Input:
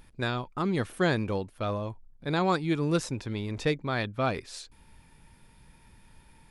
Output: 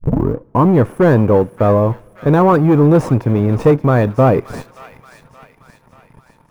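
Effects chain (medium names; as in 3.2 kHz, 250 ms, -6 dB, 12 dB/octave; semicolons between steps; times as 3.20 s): tape start-up on the opening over 0.71 s; waveshaping leveller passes 3; in parallel at -9.5 dB: Schmitt trigger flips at -24 dBFS; on the sum: graphic EQ 125/250/500/1000/4000/8000 Hz +12/+7/+11/+9/-11/-7 dB; on a send: feedback echo behind a high-pass 577 ms, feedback 53%, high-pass 1.8 kHz, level -10 dB; on the sum: two-slope reverb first 0.34 s, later 3.7 s, from -20 dB, DRR 20 dB; trim -4 dB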